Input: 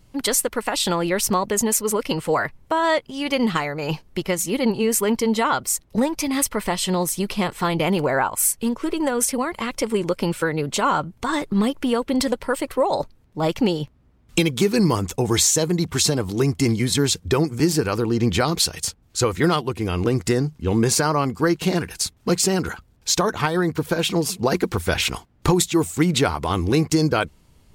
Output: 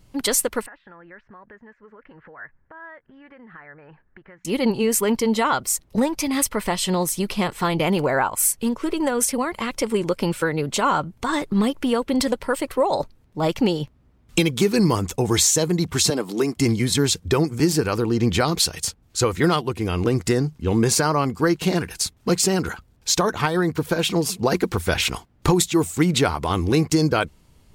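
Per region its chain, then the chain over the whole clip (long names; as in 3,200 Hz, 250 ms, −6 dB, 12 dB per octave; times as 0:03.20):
0:00.66–0:04.45: downward compressor 5 to 1, threshold −33 dBFS + transistor ladder low-pass 1,800 Hz, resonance 75%
0:16.10–0:16.57: high-pass filter 200 Hz 24 dB per octave + notch filter 6,100 Hz, Q 16
whole clip: no processing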